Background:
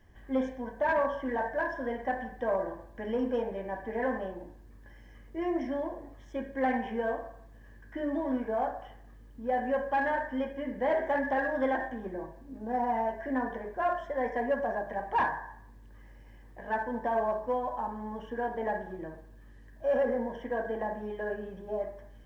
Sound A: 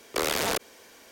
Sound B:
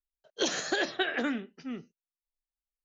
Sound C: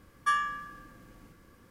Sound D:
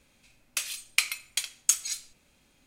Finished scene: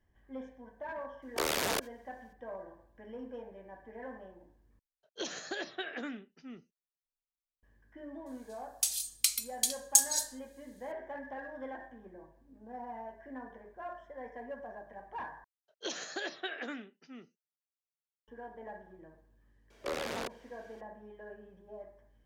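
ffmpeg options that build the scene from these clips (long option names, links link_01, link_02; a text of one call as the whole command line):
ffmpeg -i bed.wav -i cue0.wav -i cue1.wav -i cue2.wav -i cue3.wav -filter_complex "[1:a]asplit=2[link_01][link_02];[2:a]asplit=2[link_03][link_04];[0:a]volume=-14dB[link_05];[link_01]agate=range=-18dB:threshold=-49dB:ratio=16:release=100:detection=peak[link_06];[4:a]aexciter=amount=5.4:drive=6.9:freq=3500[link_07];[link_04]highpass=frequency=280:poles=1[link_08];[link_02]aemphasis=mode=reproduction:type=50kf[link_09];[link_05]asplit=3[link_10][link_11][link_12];[link_10]atrim=end=4.794[link_13];[link_03]atrim=end=2.84,asetpts=PTS-STARTPTS,volume=-9.5dB[link_14];[link_11]atrim=start=7.626:end=15.444[link_15];[link_08]atrim=end=2.84,asetpts=PTS-STARTPTS,volume=-8.5dB[link_16];[link_12]atrim=start=18.276[link_17];[link_06]atrim=end=1.11,asetpts=PTS-STARTPTS,volume=-5dB,afade=type=in:duration=0.004:curve=hsin,afade=type=out:start_time=1.106:duration=0.004:curve=hsin,adelay=1220[link_18];[link_07]atrim=end=2.66,asetpts=PTS-STARTPTS,volume=-15.5dB,afade=type=in:duration=0.004:curve=hsin,afade=type=out:start_time=2.656:duration=0.004:curve=hsin,adelay=364266S[link_19];[link_09]atrim=end=1.11,asetpts=PTS-STARTPTS,volume=-9.5dB,afade=type=in:duration=0.004:curve=hsin,afade=type=out:start_time=1.106:duration=0.004:curve=hsin,adelay=19700[link_20];[link_13][link_14]acrossfade=duration=0.004:curve1=hsin:curve2=hsin[link_21];[link_21][link_15]acrossfade=duration=0.004:curve1=hsin:curve2=hsin[link_22];[link_22][link_16]acrossfade=duration=0.004:curve1=hsin:curve2=hsin[link_23];[link_23][link_17]acrossfade=duration=0.004:curve1=hsin:curve2=hsin[link_24];[link_24][link_18][link_19][link_20]amix=inputs=4:normalize=0" out.wav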